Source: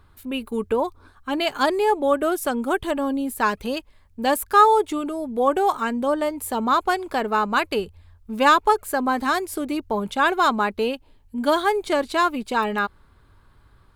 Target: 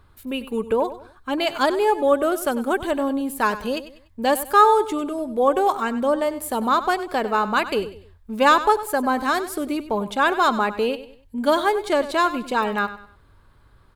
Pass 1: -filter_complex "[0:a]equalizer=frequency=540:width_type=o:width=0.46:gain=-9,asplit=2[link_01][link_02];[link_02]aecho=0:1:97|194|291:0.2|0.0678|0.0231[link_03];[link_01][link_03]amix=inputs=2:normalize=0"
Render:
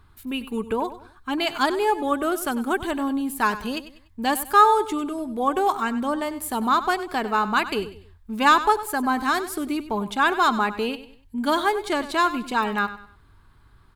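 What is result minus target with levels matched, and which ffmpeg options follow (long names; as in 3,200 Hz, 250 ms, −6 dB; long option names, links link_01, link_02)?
500 Hz band −4.0 dB
-filter_complex "[0:a]equalizer=frequency=540:width_type=o:width=0.46:gain=2.5,asplit=2[link_01][link_02];[link_02]aecho=0:1:97|194|291:0.2|0.0678|0.0231[link_03];[link_01][link_03]amix=inputs=2:normalize=0"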